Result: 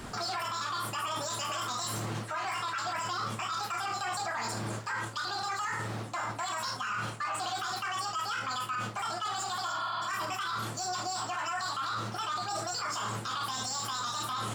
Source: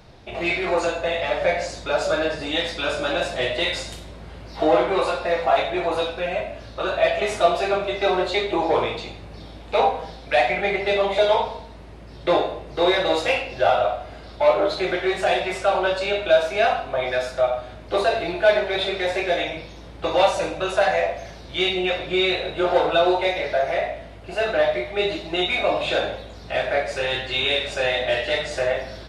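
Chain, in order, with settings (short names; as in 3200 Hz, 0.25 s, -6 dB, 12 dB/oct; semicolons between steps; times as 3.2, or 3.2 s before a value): median filter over 5 samples; spectral repair 19.38–20.14, 310–2500 Hz before; reverse; compressor 12:1, threshold -30 dBFS, peak gain reduction 19.5 dB; reverse; limiter -32 dBFS, peak gain reduction 11 dB; speed mistake 7.5 ips tape played at 15 ips; gain +5.5 dB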